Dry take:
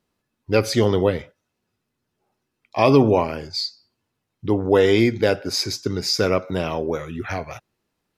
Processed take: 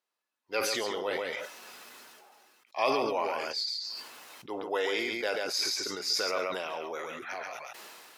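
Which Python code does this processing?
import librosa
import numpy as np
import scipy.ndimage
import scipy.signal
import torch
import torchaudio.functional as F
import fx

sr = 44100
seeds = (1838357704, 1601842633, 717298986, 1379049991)

p1 = scipy.signal.sosfilt(scipy.signal.butter(2, 710.0, 'highpass', fs=sr, output='sos'), x)
p2 = p1 + fx.echo_single(p1, sr, ms=137, db=-7.0, dry=0)
p3 = fx.sustainer(p2, sr, db_per_s=23.0)
y = F.gain(torch.from_numpy(p3), -8.0).numpy()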